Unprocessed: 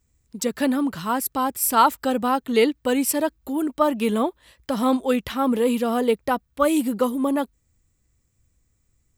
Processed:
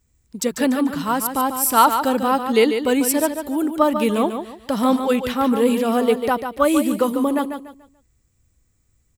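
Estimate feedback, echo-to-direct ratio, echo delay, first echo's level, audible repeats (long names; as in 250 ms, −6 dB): 30%, −7.5 dB, 145 ms, −8.0 dB, 3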